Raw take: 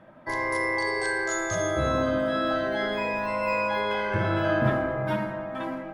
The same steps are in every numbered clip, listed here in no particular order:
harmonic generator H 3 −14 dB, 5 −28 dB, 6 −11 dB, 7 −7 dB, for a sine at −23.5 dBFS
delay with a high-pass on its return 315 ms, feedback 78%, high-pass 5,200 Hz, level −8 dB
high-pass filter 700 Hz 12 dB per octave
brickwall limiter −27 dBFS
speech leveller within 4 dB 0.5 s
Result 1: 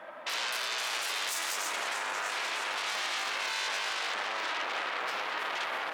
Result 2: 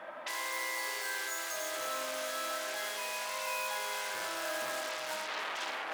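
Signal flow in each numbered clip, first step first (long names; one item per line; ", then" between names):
speech leveller, then delay with a high-pass on its return, then brickwall limiter, then harmonic generator, then high-pass filter
delay with a high-pass on its return, then harmonic generator, then speech leveller, then brickwall limiter, then high-pass filter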